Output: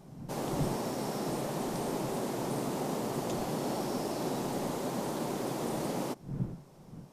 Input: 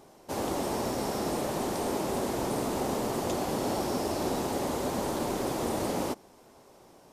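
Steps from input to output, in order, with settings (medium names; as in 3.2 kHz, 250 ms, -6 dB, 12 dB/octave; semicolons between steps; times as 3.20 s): wind noise 160 Hz -39 dBFS; resonant low shelf 110 Hz -7.5 dB, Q 3; trim -4.5 dB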